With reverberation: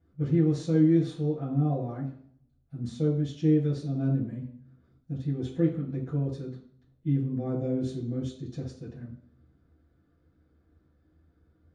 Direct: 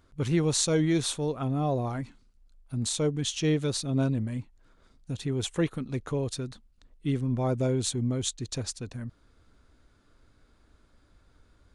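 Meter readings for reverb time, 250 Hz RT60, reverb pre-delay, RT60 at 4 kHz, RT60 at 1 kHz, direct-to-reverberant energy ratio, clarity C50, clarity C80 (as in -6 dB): 0.60 s, 0.60 s, 3 ms, 0.55 s, 0.55 s, -12.5 dB, 5.5 dB, 10.0 dB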